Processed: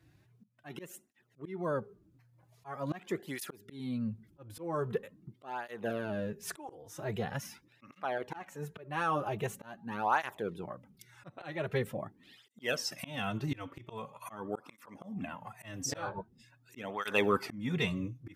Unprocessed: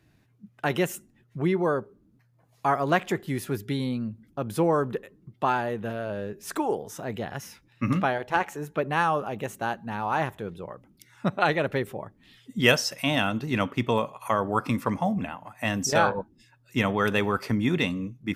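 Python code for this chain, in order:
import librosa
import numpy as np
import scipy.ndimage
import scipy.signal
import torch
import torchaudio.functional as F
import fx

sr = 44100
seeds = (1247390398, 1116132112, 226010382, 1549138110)

y = fx.auto_swell(x, sr, attack_ms=442.0)
y = fx.flanger_cancel(y, sr, hz=0.44, depth_ms=5.1)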